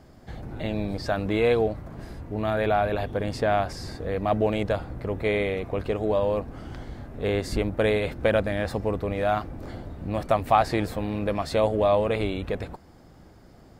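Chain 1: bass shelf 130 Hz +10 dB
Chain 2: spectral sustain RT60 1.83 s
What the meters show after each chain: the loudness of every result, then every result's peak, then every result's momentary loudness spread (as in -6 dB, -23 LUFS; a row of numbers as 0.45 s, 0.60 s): -24.5 LUFS, -22.5 LUFS; -6.5 dBFS, -4.0 dBFS; 13 LU, 13 LU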